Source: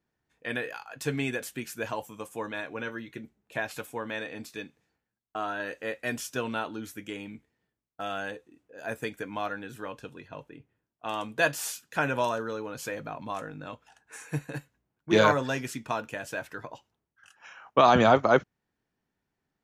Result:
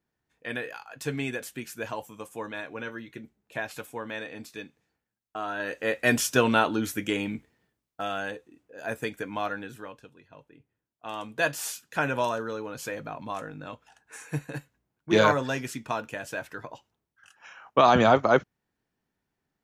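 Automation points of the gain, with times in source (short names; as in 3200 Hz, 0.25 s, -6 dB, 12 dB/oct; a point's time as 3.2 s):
5.42 s -1 dB
6.12 s +10 dB
7.33 s +10 dB
8.13 s +2 dB
9.62 s +2 dB
10.15 s -10 dB
11.67 s +0.5 dB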